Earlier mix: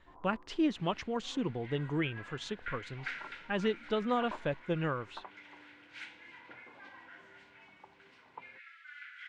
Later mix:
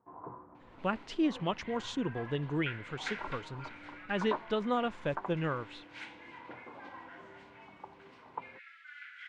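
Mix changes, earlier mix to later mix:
speech: entry +0.60 s; first sound +8.0 dB

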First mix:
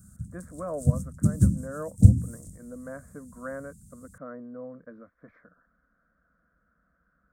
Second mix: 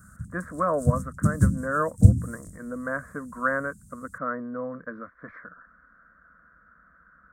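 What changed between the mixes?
speech +7.0 dB; master: add high-order bell 1.4 kHz +9.5 dB 1.2 oct

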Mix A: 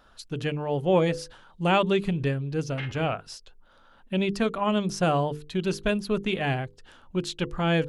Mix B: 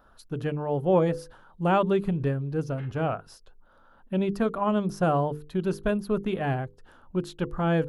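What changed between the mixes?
background -7.5 dB; master: add high-order bell 4.1 kHz -10.5 dB 2.4 oct

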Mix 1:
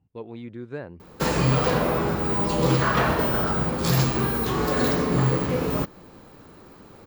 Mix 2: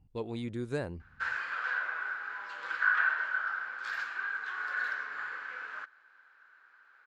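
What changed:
speech: remove band-pass 100–2800 Hz; background: add ladder band-pass 1.6 kHz, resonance 85%

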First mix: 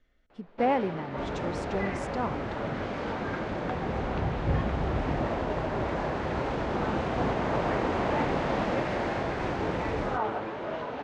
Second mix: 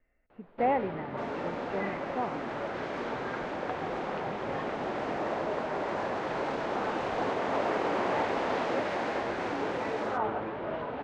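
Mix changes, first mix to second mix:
speech: add rippled Chebyshev low-pass 2.8 kHz, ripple 6 dB; first sound: add distance through air 210 m; second sound: add high-pass 370 Hz 12 dB/octave

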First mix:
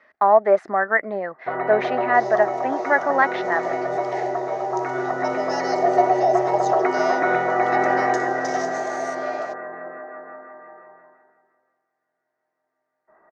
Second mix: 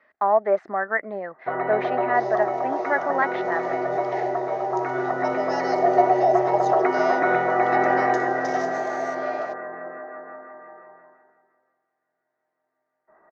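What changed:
speech -4.0 dB; master: add distance through air 110 m

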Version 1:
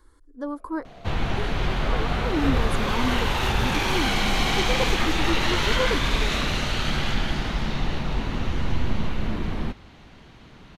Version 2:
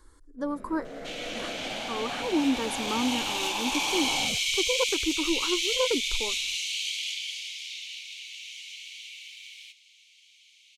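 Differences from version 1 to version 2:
first sound: remove vowel filter a; second sound: add rippled Chebyshev high-pass 2.2 kHz, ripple 3 dB; master: add peaking EQ 7.2 kHz +6.5 dB 1.2 oct

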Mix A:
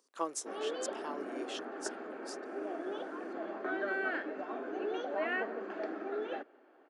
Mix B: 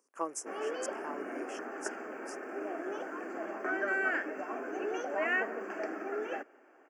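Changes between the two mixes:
background: remove low-pass 1.1 kHz 6 dB/octave; master: add Butterworth band-stop 3.8 kHz, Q 1.3

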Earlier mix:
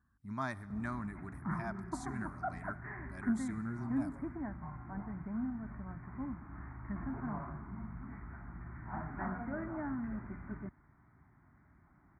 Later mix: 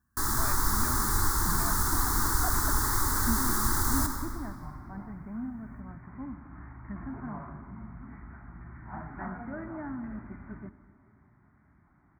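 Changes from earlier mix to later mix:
first sound: unmuted; second sound: send on

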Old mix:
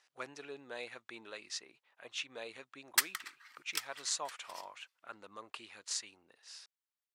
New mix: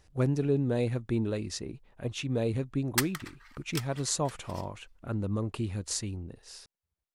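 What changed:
speech: remove distance through air 60 m; master: remove high-pass 1.2 kHz 12 dB/octave

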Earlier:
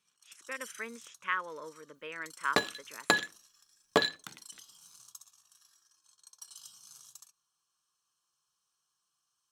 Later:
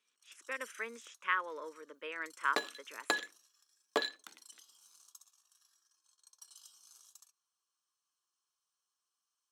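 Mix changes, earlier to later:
first sound -6.5 dB; second sound -6.5 dB; master: add high-pass 270 Hz 24 dB/octave

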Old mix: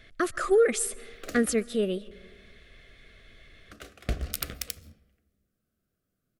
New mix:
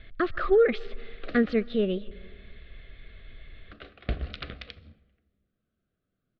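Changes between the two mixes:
speech: add bass shelf 110 Hz +11 dB; master: add steep low-pass 4.1 kHz 48 dB/octave

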